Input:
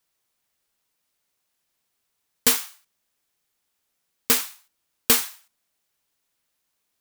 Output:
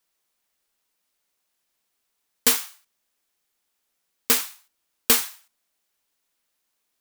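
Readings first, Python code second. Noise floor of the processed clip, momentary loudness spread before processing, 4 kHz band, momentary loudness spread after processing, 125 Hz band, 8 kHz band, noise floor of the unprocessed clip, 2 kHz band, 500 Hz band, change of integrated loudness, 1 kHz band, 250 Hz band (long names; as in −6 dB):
−77 dBFS, 17 LU, 0.0 dB, 17 LU, −4.5 dB, 0.0 dB, −77 dBFS, 0.0 dB, −0.5 dB, 0.0 dB, 0.0 dB, −1.5 dB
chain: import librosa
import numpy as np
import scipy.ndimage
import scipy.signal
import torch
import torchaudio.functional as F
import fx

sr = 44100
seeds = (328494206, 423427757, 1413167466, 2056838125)

y = fx.peak_eq(x, sr, hz=110.0, db=-9.5, octaves=0.91)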